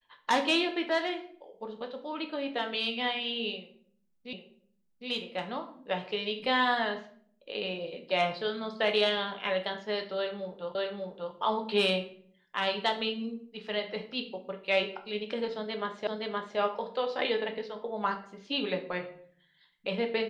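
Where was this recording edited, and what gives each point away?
4.33 s: repeat of the last 0.76 s
10.75 s: repeat of the last 0.59 s
16.07 s: repeat of the last 0.52 s

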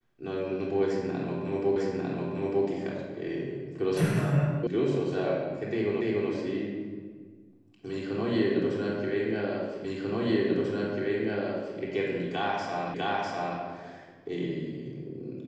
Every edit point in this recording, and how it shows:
1.76 s: repeat of the last 0.9 s
4.67 s: sound stops dead
6.01 s: repeat of the last 0.29 s
9.85 s: repeat of the last 1.94 s
12.94 s: repeat of the last 0.65 s

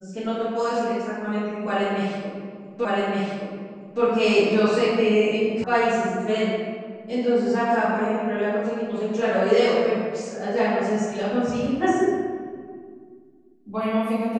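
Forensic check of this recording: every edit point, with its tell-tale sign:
2.85 s: repeat of the last 1.17 s
5.64 s: sound stops dead

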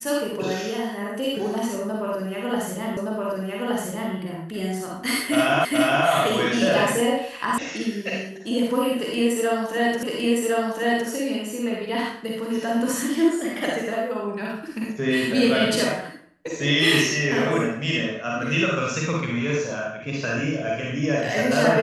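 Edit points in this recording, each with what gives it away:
2.97 s: repeat of the last 1.17 s
5.65 s: repeat of the last 0.42 s
7.58 s: sound stops dead
10.03 s: repeat of the last 1.06 s

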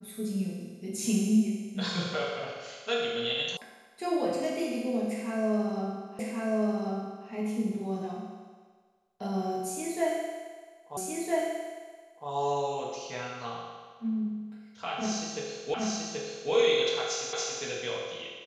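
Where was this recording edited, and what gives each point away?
3.57 s: sound stops dead
6.19 s: repeat of the last 1.09 s
10.97 s: repeat of the last 1.31 s
15.74 s: repeat of the last 0.78 s
17.33 s: repeat of the last 0.28 s

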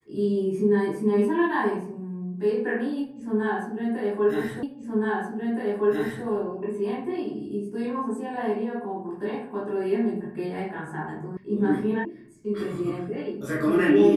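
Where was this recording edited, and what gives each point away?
4.63 s: repeat of the last 1.62 s
11.37 s: sound stops dead
12.05 s: sound stops dead

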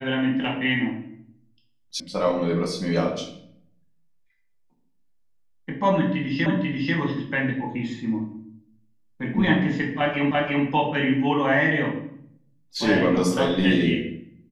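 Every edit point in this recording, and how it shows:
2.00 s: sound stops dead
6.46 s: repeat of the last 0.49 s
10.31 s: repeat of the last 0.34 s

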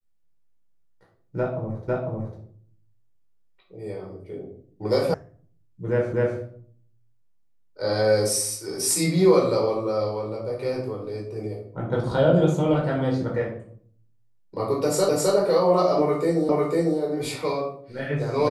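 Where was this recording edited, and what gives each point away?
1.88 s: repeat of the last 0.5 s
5.14 s: sound stops dead
6.13 s: repeat of the last 0.25 s
15.09 s: repeat of the last 0.26 s
16.49 s: repeat of the last 0.5 s

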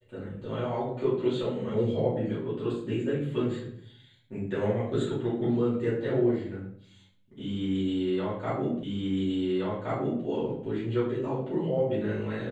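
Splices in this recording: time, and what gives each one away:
8.83 s: repeat of the last 1.42 s

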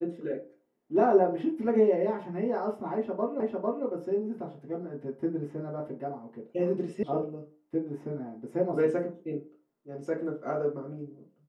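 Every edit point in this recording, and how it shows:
3.40 s: repeat of the last 0.45 s
7.03 s: sound stops dead

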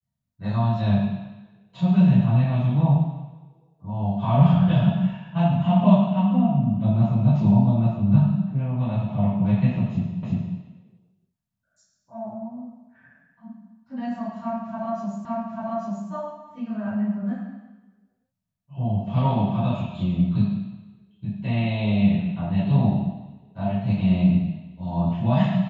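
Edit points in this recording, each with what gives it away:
10.23 s: repeat of the last 0.35 s
15.25 s: repeat of the last 0.84 s

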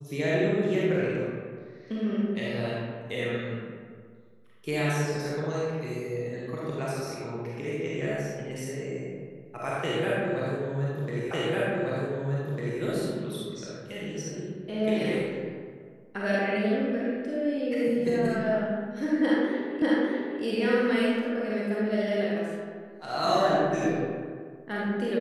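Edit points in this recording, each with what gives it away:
11.31 s: repeat of the last 1.5 s
19.82 s: repeat of the last 0.6 s

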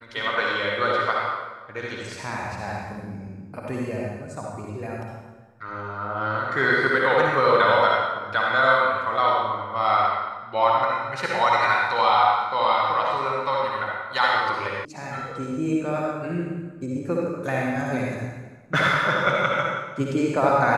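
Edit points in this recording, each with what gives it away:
14.85 s: sound stops dead

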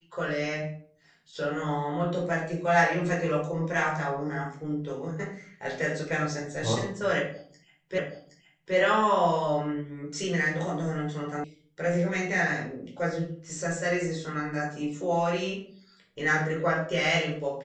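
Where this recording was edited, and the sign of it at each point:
7.98 s: repeat of the last 0.77 s
11.44 s: sound stops dead

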